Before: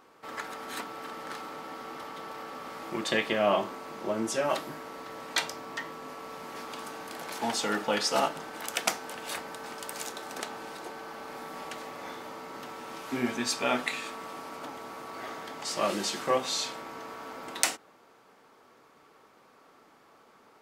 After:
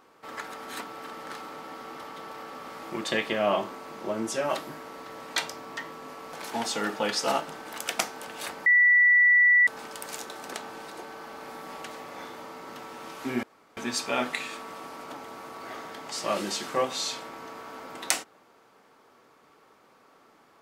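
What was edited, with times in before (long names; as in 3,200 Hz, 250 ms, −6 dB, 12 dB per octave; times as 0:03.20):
0:06.33–0:07.21: remove
0:09.54: insert tone 1,960 Hz −15.5 dBFS 1.01 s
0:13.30: splice in room tone 0.34 s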